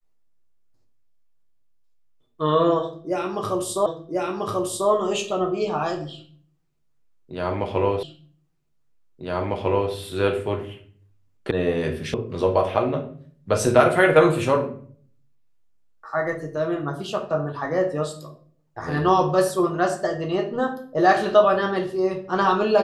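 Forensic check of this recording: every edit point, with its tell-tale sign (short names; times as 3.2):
3.86 repeat of the last 1.04 s
8.03 repeat of the last 1.9 s
11.51 sound cut off
12.14 sound cut off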